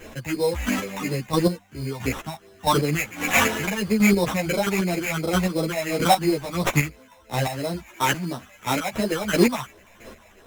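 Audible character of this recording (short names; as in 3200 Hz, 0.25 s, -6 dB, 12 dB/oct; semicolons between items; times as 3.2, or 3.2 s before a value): phasing stages 6, 2.9 Hz, lowest notch 360–1800 Hz; aliases and images of a low sample rate 4600 Hz, jitter 0%; chopped level 1.5 Hz, depth 65%, duty 20%; a shimmering, thickened sound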